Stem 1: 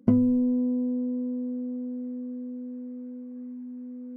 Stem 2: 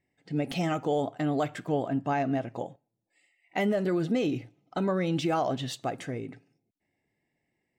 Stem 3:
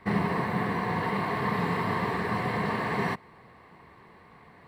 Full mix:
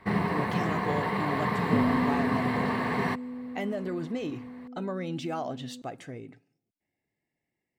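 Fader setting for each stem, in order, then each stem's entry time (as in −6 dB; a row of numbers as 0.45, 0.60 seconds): −5.5, −6.0, −0.5 decibels; 1.65, 0.00, 0.00 seconds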